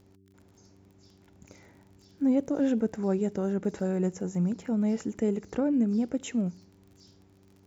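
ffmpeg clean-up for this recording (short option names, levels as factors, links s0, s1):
-af "adeclick=t=4,bandreject=f=96.6:t=h:w=4,bandreject=f=193.2:t=h:w=4,bandreject=f=289.8:t=h:w=4,bandreject=f=386.4:t=h:w=4"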